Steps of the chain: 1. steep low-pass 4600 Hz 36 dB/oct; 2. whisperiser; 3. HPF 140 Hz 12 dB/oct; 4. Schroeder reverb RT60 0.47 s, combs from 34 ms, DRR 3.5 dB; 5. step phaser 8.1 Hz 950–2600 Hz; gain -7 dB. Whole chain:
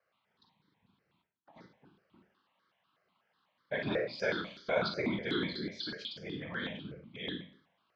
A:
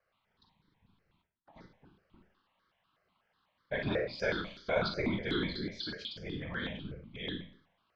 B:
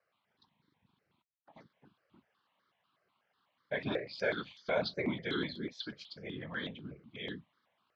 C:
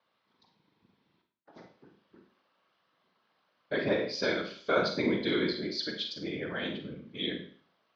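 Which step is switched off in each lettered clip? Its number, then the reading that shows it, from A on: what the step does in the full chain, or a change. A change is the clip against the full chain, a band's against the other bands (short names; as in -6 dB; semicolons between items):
3, 125 Hz band +3.0 dB; 4, loudness change -2.0 LU; 5, 125 Hz band -3.0 dB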